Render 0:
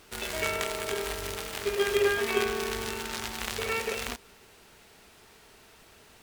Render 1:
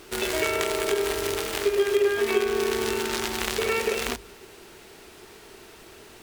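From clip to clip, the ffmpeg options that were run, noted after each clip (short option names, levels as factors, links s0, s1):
-af "equalizer=f=360:t=o:w=0.46:g=9.5,bandreject=f=50:t=h:w=6,bandreject=f=100:t=h:w=6,bandreject=f=150:t=h:w=6,bandreject=f=200:t=h:w=6,acompressor=threshold=0.0398:ratio=3,volume=2.11"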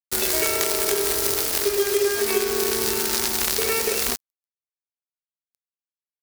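-af "acrusher=bits=4:mix=0:aa=0.5,aexciter=amount=2.8:drive=5.4:freq=4300"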